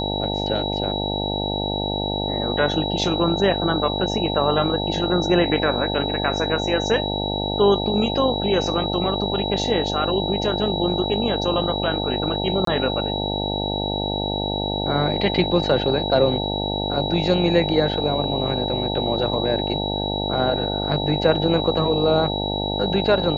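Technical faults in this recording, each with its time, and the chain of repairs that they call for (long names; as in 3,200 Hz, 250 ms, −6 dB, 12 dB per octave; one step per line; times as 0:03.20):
mains buzz 50 Hz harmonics 18 −26 dBFS
whistle 3,900 Hz −27 dBFS
0:12.65–0:12.67: drop-out 23 ms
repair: notch filter 3,900 Hz, Q 30
hum removal 50 Hz, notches 18
repair the gap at 0:12.65, 23 ms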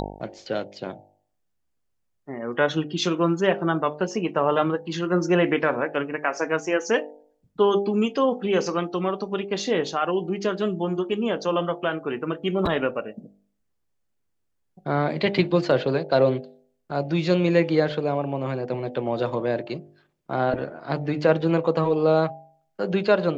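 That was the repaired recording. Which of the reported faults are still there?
none of them is left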